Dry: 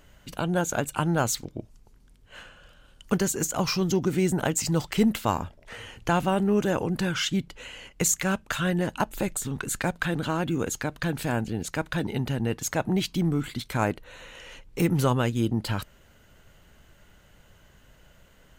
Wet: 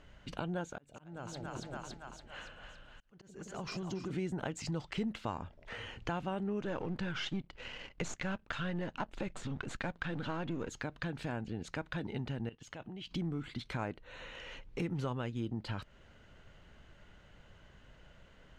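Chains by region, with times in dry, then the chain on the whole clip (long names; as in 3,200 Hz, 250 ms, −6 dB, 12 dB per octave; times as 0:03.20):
0:00.66–0:04.11: echo with a time of its own for lows and highs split 630 Hz, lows 169 ms, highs 282 ms, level −8 dB + downward compressor 2 to 1, threshold −32 dBFS + volume swells 722 ms
0:06.61–0:10.69: gain on one half-wave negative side −7 dB + high-frequency loss of the air 50 metres + leveller curve on the samples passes 1
0:12.49–0:13.11: parametric band 3,000 Hz +12 dB 0.29 octaves + output level in coarse steps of 21 dB
whole clip: low-pass filter 4,300 Hz 12 dB per octave; downward compressor 2.5 to 1, threshold −36 dBFS; level −2.5 dB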